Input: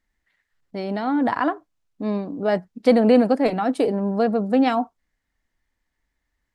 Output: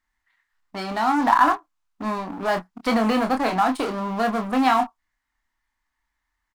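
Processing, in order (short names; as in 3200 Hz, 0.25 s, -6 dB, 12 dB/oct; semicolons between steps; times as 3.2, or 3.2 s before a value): low shelf 460 Hz -3.5 dB; in parallel at -12 dB: fuzz box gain 30 dB, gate -36 dBFS; on the sum: graphic EQ 125/500/1000 Hz -9/-11/+10 dB; short-mantissa float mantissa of 6-bit; doubler 27 ms -6 dB; gain -1.5 dB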